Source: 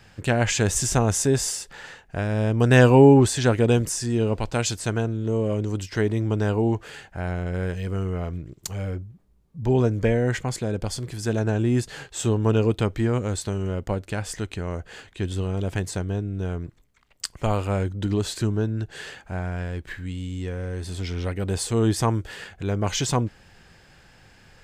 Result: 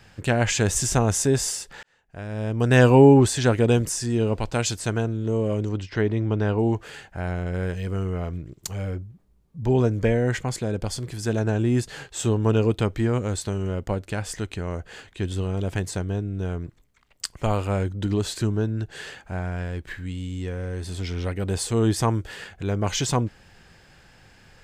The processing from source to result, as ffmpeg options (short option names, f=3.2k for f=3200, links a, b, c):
-filter_complex "[0:a]asettb=1/sr,asplit=3[a][b][c];[a]atrim=end=5.694[d];[b]atrim=start=5.69:end=6.59,asetpts=PTS-STARTPTS,afade=t=in:d=0.004:c=qsin,afade=t=out:st=0.896:d=0.004:c=qsin,lowpass=4k[e];[c]atrim=start=6.586[f];[d][e]acrossfade=d=0.004:c1=hsin:c2=qsin[g];[g][f]acrossfade=d=0.004:c1=qsin:c2=hsin,asplit=2[h][i];[h]atrim=end=1.83,asetpts=PTS-STARTPTS,afade=t=out:st=1.826:d=0.004:c=hsin[j];[i]atrim=start=1.83,asetpts=PTS-STARTPTS,afade=t=in:d=1.08[k];[j][k]concat=n=2:v=0:a=1"